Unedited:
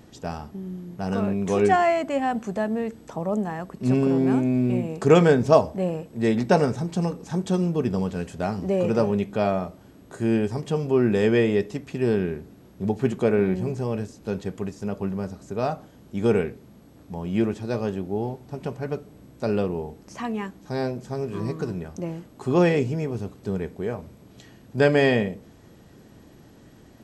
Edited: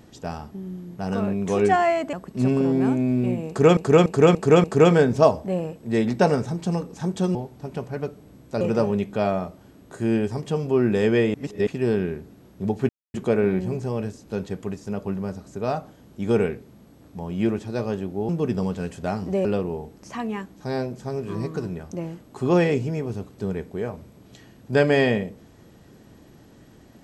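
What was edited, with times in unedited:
0:02.13–0:03.59: remove
0:04.94–0:05.23: repeat, 5 plays
0:07.65–0:08.81: swap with 0:18.24–0:19.50
0:11.54–0:11.87: reverse
0:13.09: splice in silence 0.25 s

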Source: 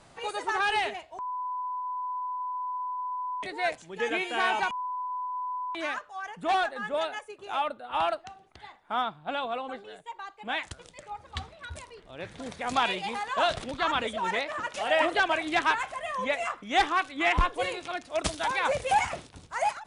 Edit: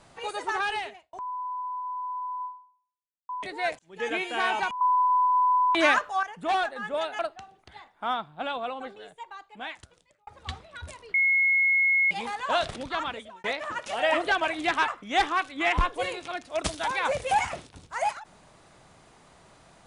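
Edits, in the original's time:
0:00.54–0:01.13: fade out
0:02.45–0:03.29: fade out exponential
0:03.79–0:04.08: fade in
0:04.81–0:06.23: clip gain +11.5 dB
0:07.19–0:08.07: remove
0:09.96–0:11.15: fade out
0:12.02–0:12.99: beep over 2,170 Hz −19 dBFS
0:13.68–0:14.32: fade out
0:15.76–0:16.48: remove

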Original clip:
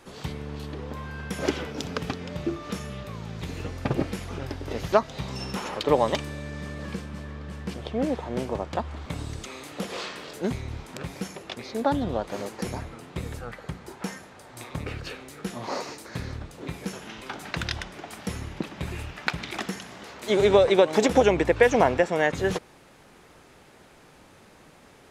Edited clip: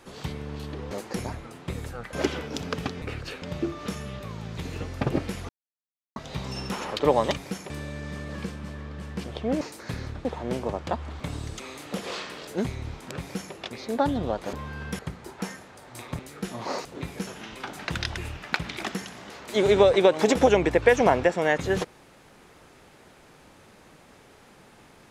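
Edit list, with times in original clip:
0:00.91–0:01.37: swap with 0:12.39–0:13.61
0:04.33–0:05.00: silence
0:11.06–0:11.40: duplicate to 0:06.20
0:14.81–0:15.21: move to 0:02.26
0:15.87–0:16.51: move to 0:08.11
0:17.83–0:18.91: remove

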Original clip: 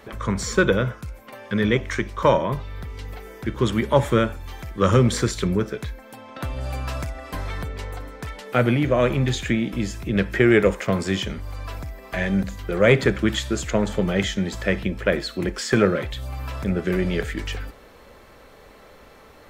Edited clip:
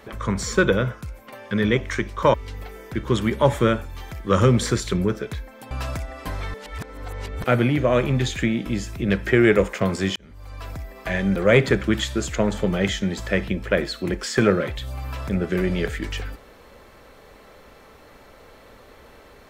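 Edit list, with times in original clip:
0:02.34–0:02.85: remove
0:06.22–0:06.78: remove
0:07.61–0:08.51: reverse
0:11.23–0:11.85: fade in
0:12.43–0:12.71: remove

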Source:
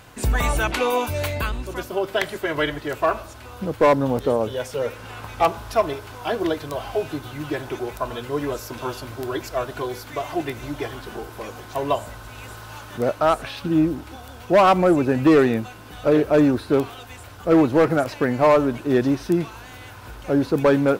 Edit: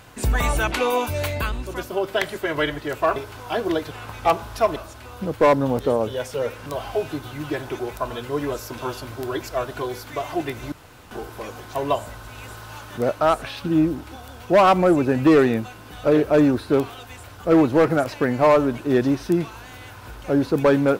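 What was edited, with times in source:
0:03.16–0:05.06: swap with 0:05.91–0:06.66
0:10.72–0:11.11: fill with room tone

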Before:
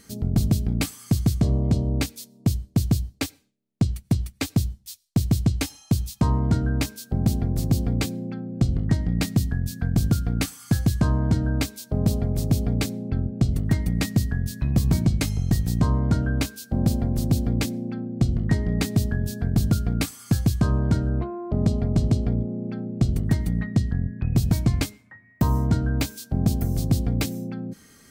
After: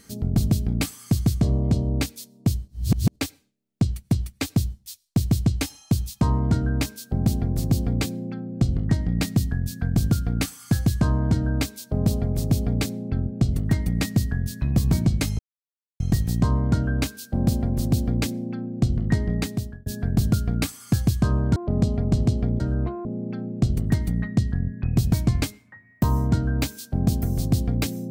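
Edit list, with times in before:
0:02.68–0:03.16: reverse
0:15.39: splice in silence 0.61 s
0:18.69–0:19.25: fade out
0:20.95–0:21.40: move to 0:22.44

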